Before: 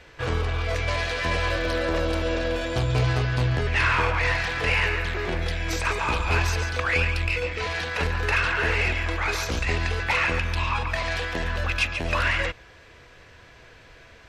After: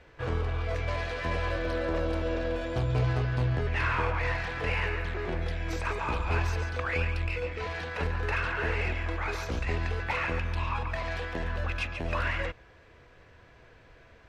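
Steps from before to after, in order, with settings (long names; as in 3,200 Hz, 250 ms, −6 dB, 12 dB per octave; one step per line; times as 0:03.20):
high-shelf EQ 2,300 Hz −10.5 dB
level −4 dB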